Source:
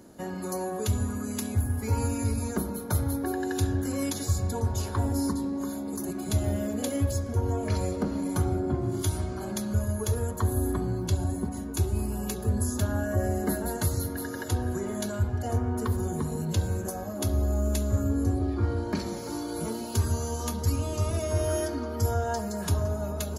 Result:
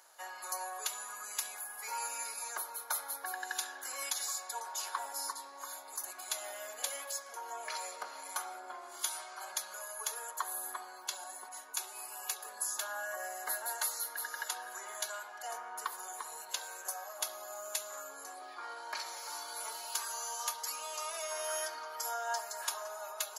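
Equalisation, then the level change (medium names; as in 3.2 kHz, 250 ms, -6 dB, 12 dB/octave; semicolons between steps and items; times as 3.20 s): high-pass 840 Hz 24 dB/octave; 0.0 dB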